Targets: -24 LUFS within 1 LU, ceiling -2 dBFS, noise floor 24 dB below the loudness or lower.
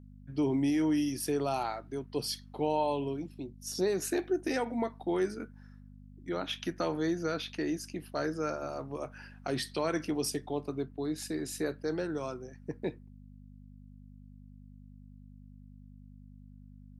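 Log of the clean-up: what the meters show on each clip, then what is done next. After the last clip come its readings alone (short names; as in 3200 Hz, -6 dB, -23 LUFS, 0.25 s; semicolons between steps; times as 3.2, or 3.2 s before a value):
hum 50 Hz; harmonics up to 250 Hz; hum level -49 dBFS; loudness -34.0 LUFS; peak -18.5 dBFS; loudness target -24.0 LUFS
-> de-hum 50 Hz, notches 5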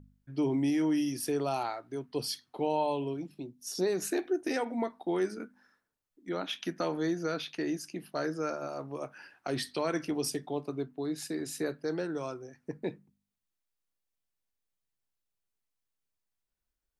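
hum none; loudness -34.0 LUFS; peak -18.0 dBFS; loudness target -24.0 LUFS
-> gain +10 dB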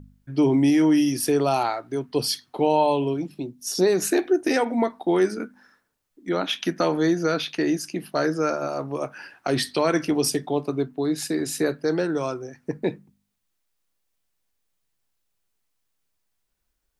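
loudness -24.0 LUFS; peak -8.0 dBFS; noise floor -76 dBFS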